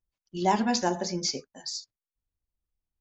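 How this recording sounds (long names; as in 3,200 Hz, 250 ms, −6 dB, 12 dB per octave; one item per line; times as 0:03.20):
background noise floor −95 dBFS
spectral slope −3.5 dB per octave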